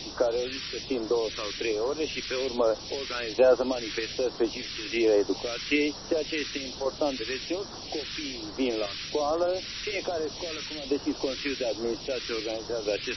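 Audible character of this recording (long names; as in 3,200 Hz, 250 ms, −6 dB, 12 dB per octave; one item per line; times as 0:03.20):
sample-and-hold tremolo, depth 70%
a quantiser's noise floor 6 bits, dither triangular
phaser sweep stages 2, 1.2 Hz, lowest notch 680–2,300 Hz
MP3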